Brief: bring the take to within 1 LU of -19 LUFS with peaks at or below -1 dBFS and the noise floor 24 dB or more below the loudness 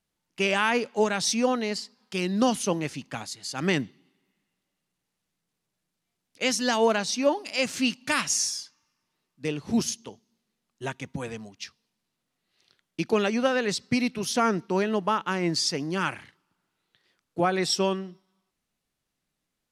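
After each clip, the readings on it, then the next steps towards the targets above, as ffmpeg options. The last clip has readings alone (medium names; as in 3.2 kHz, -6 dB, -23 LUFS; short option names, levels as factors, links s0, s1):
loudness -26.5 LUFS; peak level -11.0 dBFS; loudness target -19.0 LUFS
-> -af "volume=2.37"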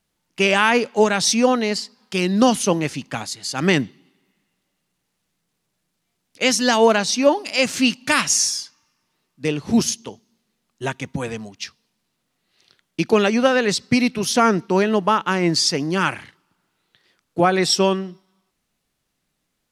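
loudness -19.0 LUFS; peak level -3.5 dBFS; noise floor -75 dBFS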